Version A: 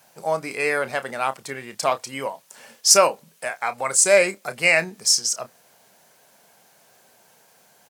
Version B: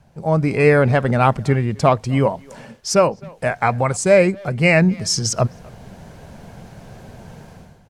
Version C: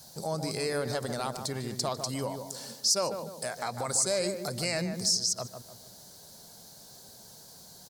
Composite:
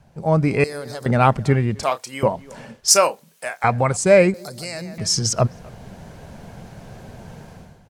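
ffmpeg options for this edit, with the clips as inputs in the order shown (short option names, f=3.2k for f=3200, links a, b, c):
-filter_complex "[2:a]asplit=2[a][b];[0:a]asplit=2[c][d];[1:a]asplit=5[e][f][g][h][i];[e]atrim=end=0.642[j];[a]atrim=start=0.638:end=1.062[k];[f]atrim=start=1.058:end=1.832[l];[c]atrim=start=1.828:end=2.232[m];[g]atrim=start=2.228:end=2.882[n];[d]atrim=start=2.878:end=3.642[o];[h]atrim=start=3.638:end=4.342[p];[b]atrim=start=4.338:end=4.982[q];[i]atrim=start=4.978[r];[j][k]acrossfade=d=0.004:c1=hsin:c2=hsin[s];[s][l]acrossfade=d=0.004:c1=hsin:c2=hsin[t];[t][m]acrossfade=d=0.004:c1=hsin:c2=hsin[u];[u][n]acrossfade=d=0.004:c1=hsin:c2=hsin[v];[v][o]acrossfade=d=0.004:c1=hsin:c2=hsin[w];[w][p]acrossfade=d=0.004:c1=hsin:c2=hsin[x];[x][q]acrossfade=d=0.004:c1=hsin:c2=hsin[y];[y][r]acrossfade=d=0.004:c1=hsin:c2=hsin"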